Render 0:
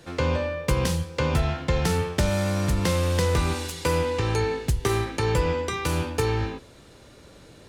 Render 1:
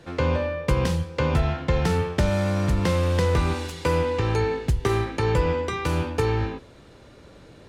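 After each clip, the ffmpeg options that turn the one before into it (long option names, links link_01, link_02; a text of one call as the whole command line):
ffmpeg -i in.wav -af "highshelf=frequency=4900:gain=-11,volume=1.5dB" out.wav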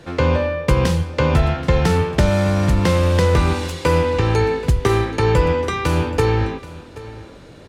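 ffmpeg -i in.wav -af "aecho=1:1:779:0.126,volume=6dB" out.wav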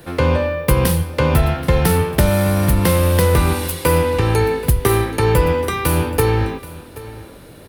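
ffmpeg -i in.wav -af "aexciter=amount=8.6:drive=6.3:freq=9600,volume=1dB" out.wav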